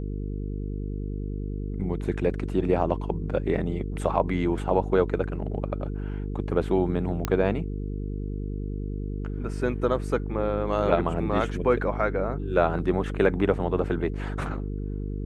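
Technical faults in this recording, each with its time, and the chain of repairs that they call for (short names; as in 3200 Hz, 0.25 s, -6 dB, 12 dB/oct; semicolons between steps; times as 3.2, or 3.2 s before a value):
buzz 50 Hz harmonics 9 -31 dBFS
7.25 pop -11 dBFS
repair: de-click; de-hum 50 Hz, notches 9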